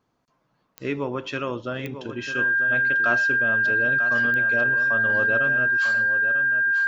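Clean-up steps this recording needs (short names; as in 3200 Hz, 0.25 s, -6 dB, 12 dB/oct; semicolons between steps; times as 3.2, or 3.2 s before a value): de-click; notch 1600 Hz, Q 30; inverse comb 0.944 s -10 dB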